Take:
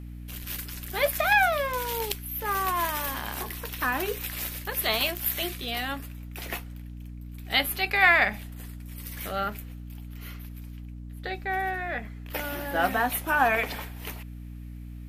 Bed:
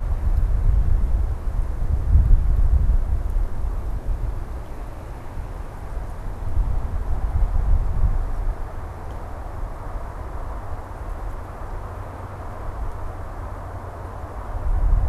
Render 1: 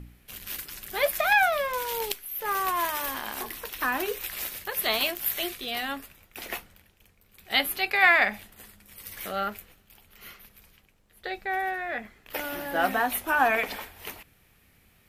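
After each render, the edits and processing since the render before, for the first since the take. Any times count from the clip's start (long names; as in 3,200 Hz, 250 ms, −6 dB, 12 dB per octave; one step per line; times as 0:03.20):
hum removal 60 Hz, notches 5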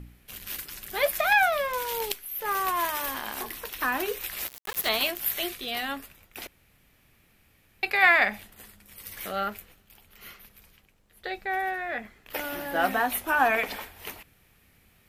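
0:04.47–0:04.89: centre clipping without the shift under −29.5 dBFS
0:06.47–0:07.83: fill with room tone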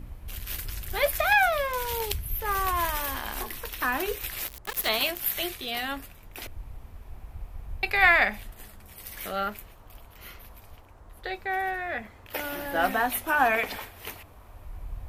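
mix in bed −19 dB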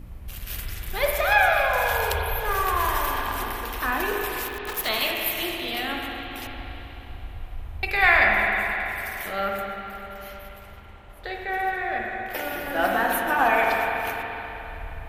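spring reverb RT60 3.7 s, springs 39/51 ms, chirp 50 ms, DRR −1.5 dB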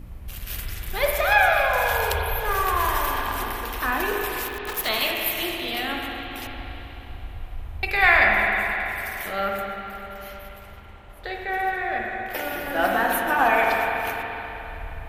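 level +1 dB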